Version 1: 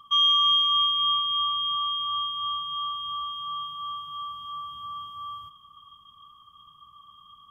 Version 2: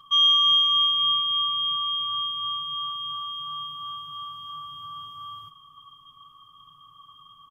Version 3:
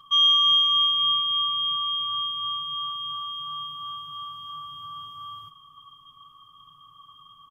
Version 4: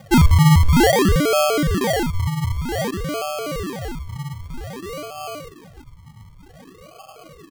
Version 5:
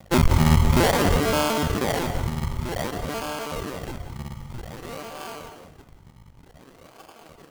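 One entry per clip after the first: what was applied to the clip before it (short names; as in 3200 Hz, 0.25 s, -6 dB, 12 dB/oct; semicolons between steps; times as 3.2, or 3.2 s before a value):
notch 650 Hz, Q 21; comb 7.2 ms, depth 79%
nothing audible
decimation with a swept rate 33×, swing 60% 0.53 Hz; gain +7.5 dB
cycle switcher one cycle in 2, muted; on a send at -7.5 dB: reverb RT60 0.60 s, pre-delay 0.154 s; on the sum: gain -2.5 dB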